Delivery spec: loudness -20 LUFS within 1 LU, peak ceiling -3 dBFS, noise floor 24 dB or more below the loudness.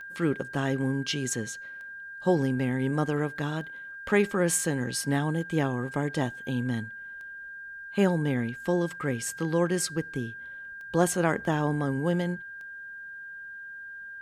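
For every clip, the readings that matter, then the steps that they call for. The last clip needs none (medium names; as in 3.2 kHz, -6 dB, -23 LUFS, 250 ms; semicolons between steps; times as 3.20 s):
clicks found 8; steady tone 1.6 kHz; tone level -39 dBFS; loudness -28.5 LUFS; peak level -10.5 dBFS; loudness target -20.0 LUFS
-> de-click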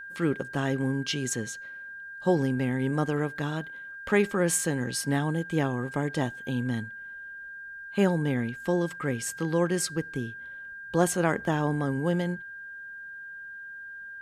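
clicks found 0; steady tone 1.6 kHz; tone level -39 dBFS
-> band-stop 1.6 kHz, Q 30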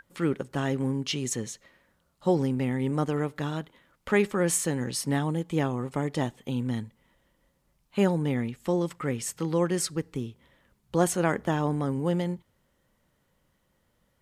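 steady tone not found; loudness -28.5 LUFS; peak level -10.5 dBFS; loudness target -20.0 LUFS
-> trim +8.5 dB; peak limiter -3 dBFS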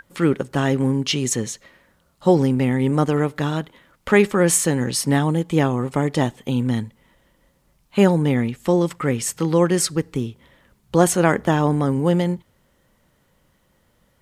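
loudness -20.0 LUFS; peak level -3.0 dBFS; noise floor -63 dBFS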